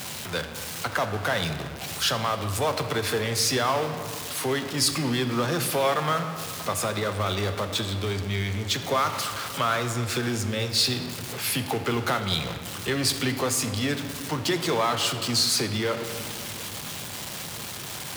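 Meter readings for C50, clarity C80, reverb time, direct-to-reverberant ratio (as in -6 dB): 8.5 dB, 9.5 dB, 2.3 s, 7.0 dB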